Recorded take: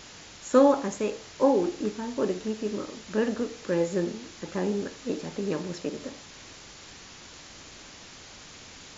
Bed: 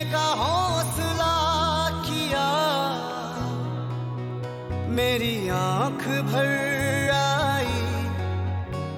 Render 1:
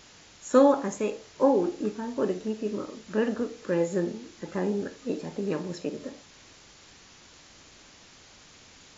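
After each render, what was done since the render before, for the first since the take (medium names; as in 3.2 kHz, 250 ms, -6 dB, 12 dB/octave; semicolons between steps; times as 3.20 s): noise print and reduce 6 dB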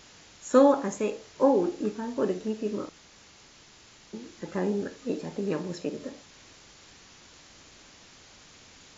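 2.89–4.13 s: room tone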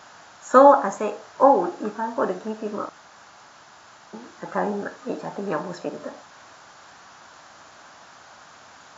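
high-pass 98 Hz 12 dB/octave; high-order bell 1 kHz +13 dB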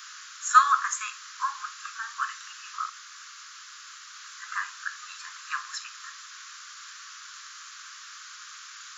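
steep high-pass 1.1 kHz 96 dB/octave; treble shelf 2.6 kHz +11 dB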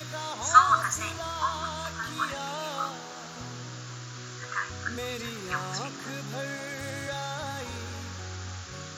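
add bed -12.5 dB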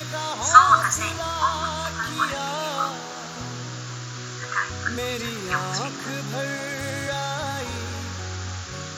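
trim +6.5 dB; peak limiter -1 dBFS, peak gain reduction 2 dB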